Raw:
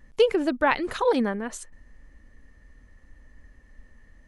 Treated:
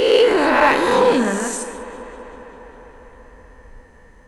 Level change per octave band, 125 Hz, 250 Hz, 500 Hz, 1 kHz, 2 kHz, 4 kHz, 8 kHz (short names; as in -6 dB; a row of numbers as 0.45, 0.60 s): +8.5, +6.5, +9.0, +10.5, +10.5, +11.0, +14.0 dB